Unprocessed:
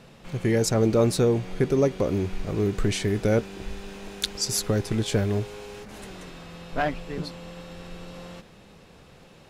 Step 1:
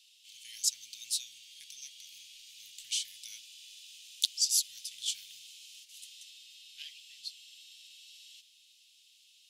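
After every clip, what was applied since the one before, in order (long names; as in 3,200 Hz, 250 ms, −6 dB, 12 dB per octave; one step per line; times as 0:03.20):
elliptic high-pass filter 3,000 Hz, stop band 60 dB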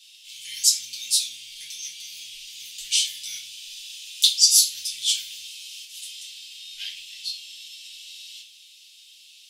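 rectangular room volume 33 cubic metres, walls mixed, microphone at 0.92 metres
level +7 dB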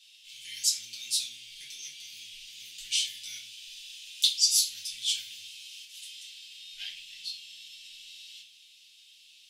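high-shelf EQ 2,900 Hz −9.5 dB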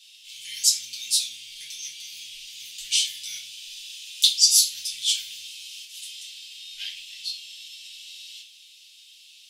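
high-shelf EQ 2,200 Hz +7.5 dB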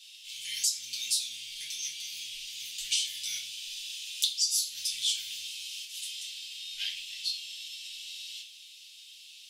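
downward compressor 5 to 1, threshold −26 dBFS, peak gain reduction 13 dB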